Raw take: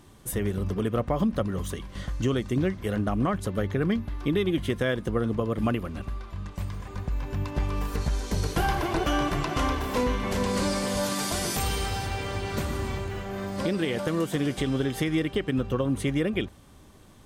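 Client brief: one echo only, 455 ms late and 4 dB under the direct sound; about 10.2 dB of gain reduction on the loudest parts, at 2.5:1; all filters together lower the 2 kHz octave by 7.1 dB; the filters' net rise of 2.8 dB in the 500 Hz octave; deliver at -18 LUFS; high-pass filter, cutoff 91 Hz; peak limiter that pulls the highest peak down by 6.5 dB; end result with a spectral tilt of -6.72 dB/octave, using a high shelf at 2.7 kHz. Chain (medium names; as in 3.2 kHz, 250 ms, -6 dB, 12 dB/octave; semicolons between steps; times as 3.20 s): high-pass 91 Hz; peaking EQ 500 Hz +4 dB; peaking EQ 2 kHz -6 dB; treble shelf 2.7 kHz -8.5 dB; compression 2.5:1, threshold -36 dBFS; peak limiter -26.5 dBFS; delay 455 ms -4 dB; trim +18.5 dB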